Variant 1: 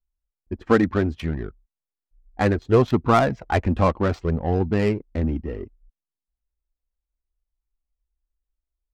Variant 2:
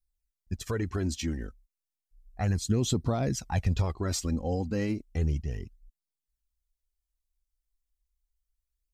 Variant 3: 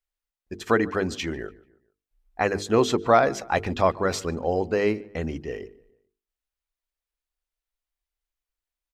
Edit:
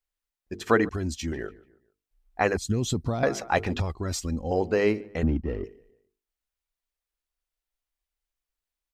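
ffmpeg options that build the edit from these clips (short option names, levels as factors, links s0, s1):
-filter_complex "[1:a]asplit=3[s0][s1][s2];[2:a]asplit=5[s3][s4][s5][s6][s7];[s3]atrim=end=0.892[s8];[s0]atrim=start=0.888:end=1.322[s9];[s4]atrim=start=1.318:end=2.572[s10];[s1]atrim=start=2.568:end=3.232[s11];[s5]atrim=start=3.228:end=3.802[s12];[s2]atrim=start=3.798:end=4.512[s13];[s6]atrim=start=4.508:end=5.232[s14];[0:a]atrim=start=5.228:end=5.642[s15];[s7]atrim=start=5.638[s16];[s8][s9]acrossfade=d=0.004:c1=hsin:c2=hsin[s17];[s17][s10]acrossfade=d=0.004:c1=hsin:c2=hsin[s18];[s18][s11]acrossfade=d=0.004:c1=hsin:c2=hsin[s19];[s19][s12]acrossfade=d=0.004:c1=hsin:c2=hsin[s20];[s20][s13]acrossfade=d=0.004:c1=hsin:c2=hsin[s21];[s21][s14]acrossfade=d=0.004:c1=hsin:c2=hsin[s22];[s22][s15]acrossfade=d=0.004:c1=hsin:c2=hsin[s23];[s23][s16]acrossfade=d=0.004:c1=hsin:c2=hsin"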